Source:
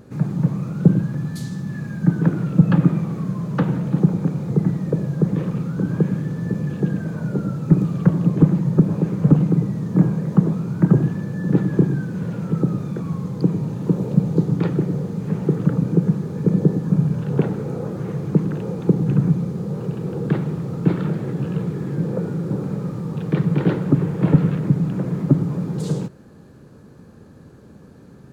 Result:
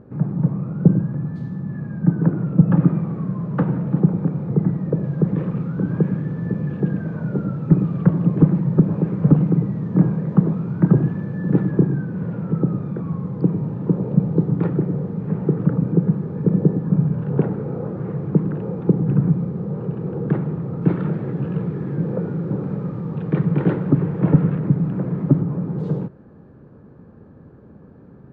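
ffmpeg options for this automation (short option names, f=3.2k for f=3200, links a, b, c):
-af "asetnsamples=n=441:p=0,asendcmd='2.77 lowpass f 1600;5.03 lowpass f 2100;11.71 lowpass f 1600;20.82 lowpass f 2100;24.21 lowpass f 1800;25.41 lowpass f 1400',lowpass=1.2k"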